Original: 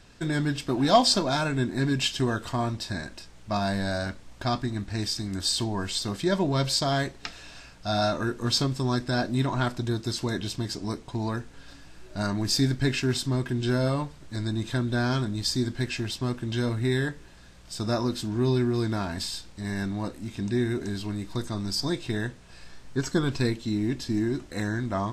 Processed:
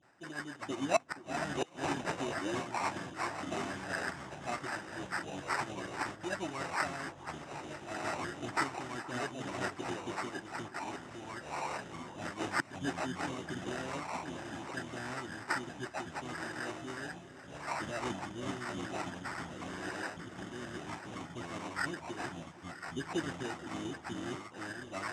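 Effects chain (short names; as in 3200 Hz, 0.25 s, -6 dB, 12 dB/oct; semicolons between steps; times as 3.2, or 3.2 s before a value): echoes that change speed 0.295 s, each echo -6 st, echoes 3; bell 890 Hz -10.5 dB 0.31 oct; reverse; upward compressor, threshold -33 dBFS; reverse; flange 0.33 Hz, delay 8.1 ms, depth 5.4 ms, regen +62%; dispersion highs, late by 53 ms, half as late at 1700 Hz; flipped gate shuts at -14 dBFS, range -24 dB; sample-rate reducer 3300 Hz, jitter 0%; harmonic-percussive split harmonic -13 dB; speaker cabinet 210–8100 Hz, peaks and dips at 220 Hz -9 dB, 460 Hz -8 dB, 870 Hz +4 dB, 4400 Hz -8 dB; on a send: echo with dull and thin repeats by turns 0.472 s, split 1200 Hz, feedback 71%, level -14 dB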